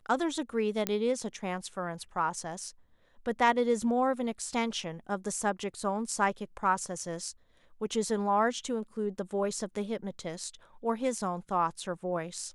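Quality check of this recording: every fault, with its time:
0.87 s: pop -12 dBFS

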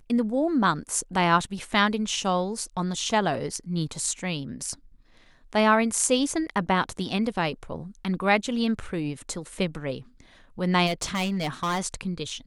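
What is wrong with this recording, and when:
10.86–11.80 s: clipped -22.5 dBFS

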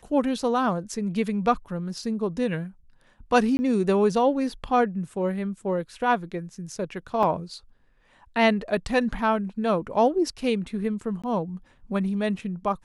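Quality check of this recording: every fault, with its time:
3.57–3.59 s: dropout 20 ms
7.23 s: dropout 2.6 ms
11.22–11.24 s: dropout 16 ms

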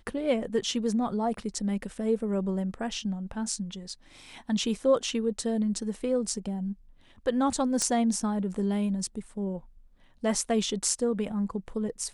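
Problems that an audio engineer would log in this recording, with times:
7.82 s: pop -14 dBFS

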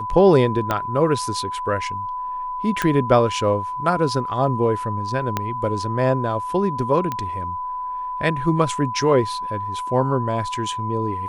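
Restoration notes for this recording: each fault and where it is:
whine 1 kHz -25 dBFS
0.71 s: pop -7 dBFS
2.82 s: pop -6 dBFS
5.37 s: pop -7 dBFS
7.12 s: pop -12 dBFS

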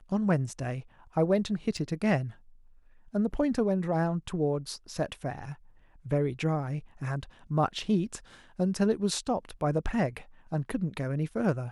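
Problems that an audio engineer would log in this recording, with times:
1.77 s: dropout 4.2 ms

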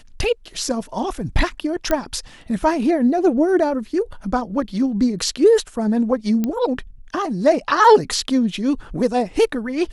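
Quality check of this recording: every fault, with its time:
1.91 s: pop -6 dBFS
6.44 s: pop -10 dBFS

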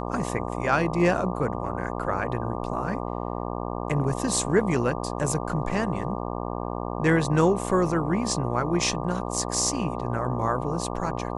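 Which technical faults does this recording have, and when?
buzz 60 Hz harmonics 20 -31 dBFS

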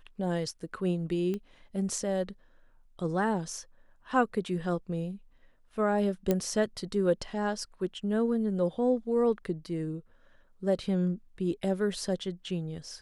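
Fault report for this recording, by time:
1.34 s: pop -23 dBFS
6.31 s: pop -13 dBFS

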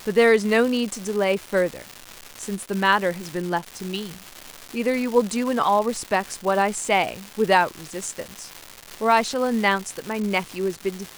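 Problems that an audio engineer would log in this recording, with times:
crackle 490 per s -27 dBFS

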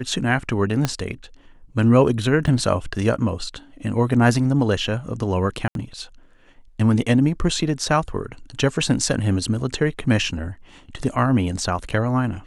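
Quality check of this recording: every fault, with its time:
0.85 s: pop -6 dBFS
2.47–2.48 s: dropout 5.9 ms
5.68–5.75 s: dropout 72 ms

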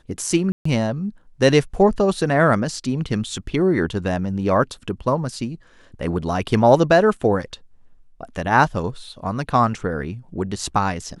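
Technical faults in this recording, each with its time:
0.52–0.65 s: dropout 134 ms

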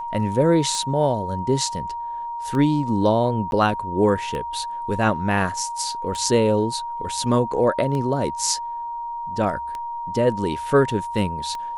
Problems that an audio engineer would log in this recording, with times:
tick 33 1/3 rpm -17 dBFS
whine 940 Hz -27 dBFS
3.51–3.52 s: dropout 11 ms

